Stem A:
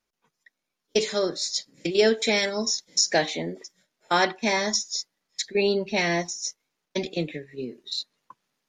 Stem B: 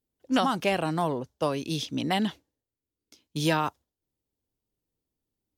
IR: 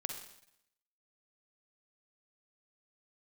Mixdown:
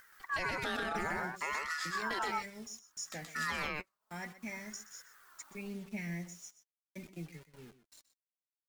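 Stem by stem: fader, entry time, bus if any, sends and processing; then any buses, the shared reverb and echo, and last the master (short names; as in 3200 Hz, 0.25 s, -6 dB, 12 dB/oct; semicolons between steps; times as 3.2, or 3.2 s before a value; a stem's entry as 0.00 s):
-5.0 dB, 0.00 s, no send, echo send -15 dB, EQ curve 180 Hz 0 dB, 260 Hz -10 dB, 460 Hz -17 dB, 1400 Hz -17 dB, 2200 Hz -6 dB, 3900 Hz -29 dB, 9500 Hz +6 dB; requantised 8-bit, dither none
-0.5 dB, 0.00 s, no send, echo send -3.5 dB, upward compressor, threshold -30 dBFS; ring modulator with a swept carrier 1300 Hz, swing 25%, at 0.61 Hz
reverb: off
echo: echo 0.125 s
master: flange 0.4 Hz, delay 1.9 ms, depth 3.7 ms, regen +48%; limiter -26 dBFS, peak gain reduction 8 dB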